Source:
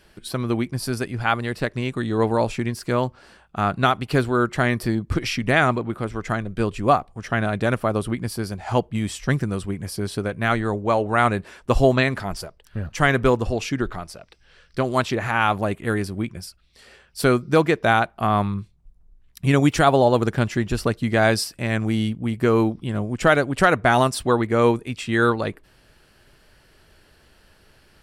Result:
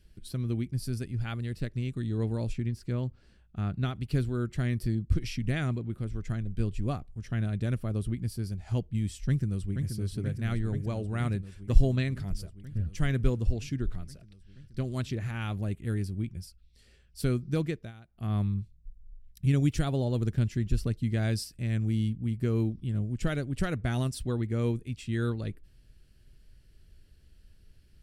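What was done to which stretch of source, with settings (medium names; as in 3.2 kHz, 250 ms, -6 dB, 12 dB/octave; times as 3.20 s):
2.53–3.96 s: treble shelf 6 kHz -9.5 dB
9.27–9.89 s: echo throw 480 ms, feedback 80%, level -7 dB
17.67–18.32 s: dip -18.5 dB, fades 0.25 s
whole clip: amplifier tone stack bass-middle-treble 10-0-1; trim +9 dB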